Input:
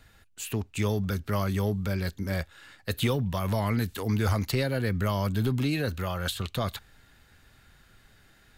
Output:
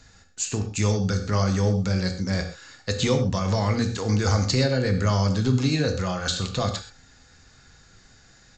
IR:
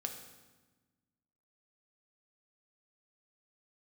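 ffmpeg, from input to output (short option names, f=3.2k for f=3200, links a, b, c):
-filter_complex "[0:a]aexciter=amount=5.2:drive=6.6:freq=4.5k,highshelf=f=5.6k:g=-9.5[a];[1:a]atrim=start_sample=2205,atrim=end_sample=6174[b];[a][b]afir=irnorm=-1:irlink=0,aresample=16000,aresample=44100,volume=5dB"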